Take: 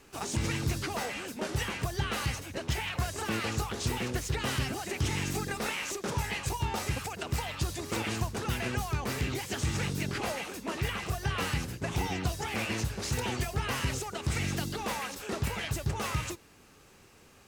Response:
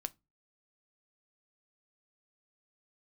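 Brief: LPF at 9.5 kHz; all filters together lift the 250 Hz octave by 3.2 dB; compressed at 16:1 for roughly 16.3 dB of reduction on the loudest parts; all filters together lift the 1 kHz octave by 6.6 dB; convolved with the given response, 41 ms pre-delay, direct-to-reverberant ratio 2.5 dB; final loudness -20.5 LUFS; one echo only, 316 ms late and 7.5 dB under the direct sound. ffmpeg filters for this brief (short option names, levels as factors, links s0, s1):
-filter_complex "[0:a]lowpass=9500,equalizer=f=250:t=o:g=4,equalizer=f=1000:t=o:g=8,acompressor=threshold=0.00891:ratio=16,aecho=1:1:316:0.422,asplit=2[s0][s1];[1:a]atrim=start_sample=2205,adelay=41[s2];[s1][s2]afir=irnorm=-1:irlink=0,volume=0.891[s3];[s0][s3]amix=inputs=2:normalize=0,volume=12.6"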